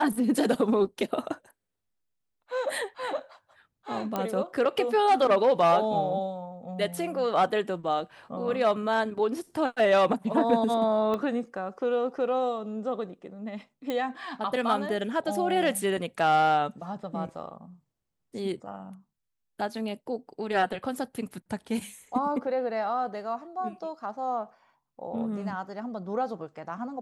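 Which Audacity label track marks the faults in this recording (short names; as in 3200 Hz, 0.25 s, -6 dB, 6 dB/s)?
4.160000	4.160000	pop -15 dBFS
11.140000	11.140000	pop -19 dBFS
13.900000	13.900000	pop -18 dBFS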